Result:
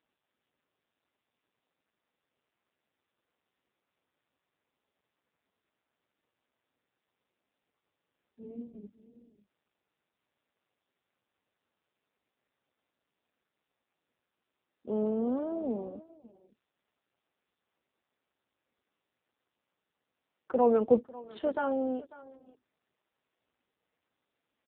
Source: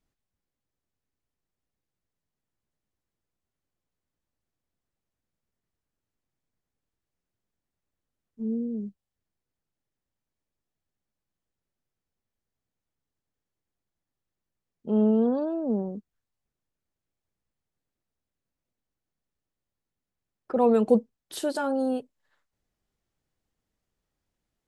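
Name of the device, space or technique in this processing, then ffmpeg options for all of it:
satellite phone: -af "highpass=350,lowpass=3100,equalizer=frequency=250:width_type=o:width=0.28:gain=5.5,aecho=1:1:546:0.112,volume=-1dB" -ar 8000 -c:a libopencore_amrnb -b:a 5900

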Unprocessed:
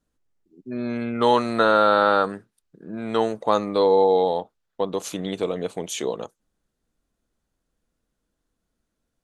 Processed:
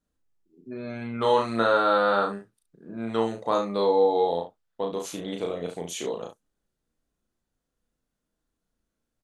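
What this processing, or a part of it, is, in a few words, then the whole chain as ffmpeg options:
slapback doubling: -filter_complex "[0:a]asplit=3[link_01][link_02][link_03];[link_02]adelay=35,volume=-3dB[link_04];[link_03]adelay=70,volume=-9dB[link_05];[link_01][link_04][link_05]amix=inputs=3:normalize=0,volume=-6dB"

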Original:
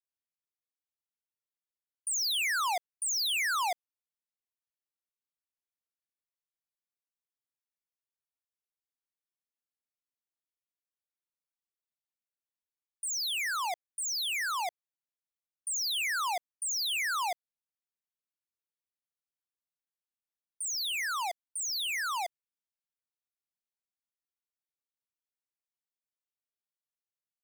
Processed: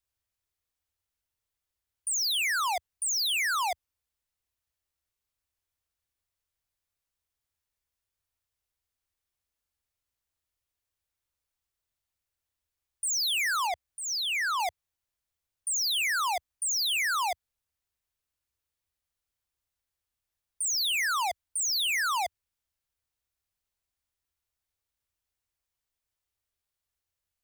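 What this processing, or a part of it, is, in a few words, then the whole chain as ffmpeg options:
car stereo with a boomy subwoofer: -filter_complex "[0:a]asettb=1/sr,asplit=3[link_01][link_02][link_03];[link_01]atrim=end=13.674[link_04];[link_02]atrim=start=13.67:end=14.6,asetpts=PTS-STARTPTS,afade=type=in:duration=0.004:curve=qsin,afade=type=out:start_time=0.926:duration=0.004:curve=qsin,acrossover=split=5200[link_05][link_06];[link_06]acompressor=threshold=-49dB:ratio=4:attack=1:release=60[link_07];[link_05][link_07]amix=inputs=2:normalize=0[link_08];[link_03]atrim=start=14.596[link_09];[link_04][link_08]acrossfade=duration=0.004:curve1=hsin:curve2=qsin[link_10];[link_10][link_09]acrossfade=duration=0.004:curve1=qsin:curve2=hsin,lowshelf=frequency=120:width_type=q:width=1.5:gain=13,alimiter=level_in=10.5dB:limit=-24dB:level=0:latency=1,volume=-10.5dB,volume=7.5dB"

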